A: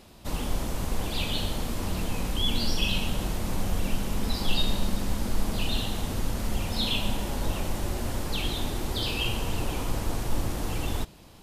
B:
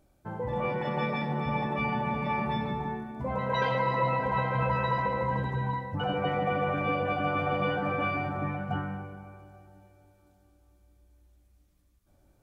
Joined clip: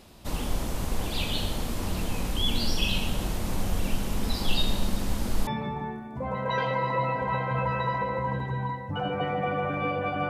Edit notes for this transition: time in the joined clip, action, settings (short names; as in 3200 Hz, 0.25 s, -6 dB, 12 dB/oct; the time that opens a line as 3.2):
A
5.47 switch to B from 2.51 s